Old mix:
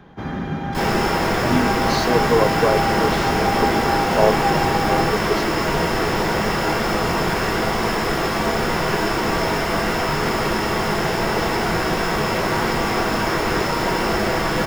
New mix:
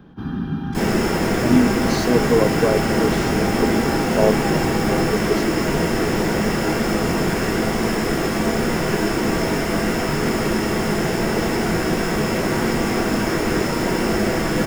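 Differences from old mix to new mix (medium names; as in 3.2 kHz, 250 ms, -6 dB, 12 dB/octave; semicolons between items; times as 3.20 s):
first sound: add static phaser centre 2.1 kHz, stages 6; master: add graphic EQ 250/1000/4000/8000 Hz +6/-6/-5/+4 dB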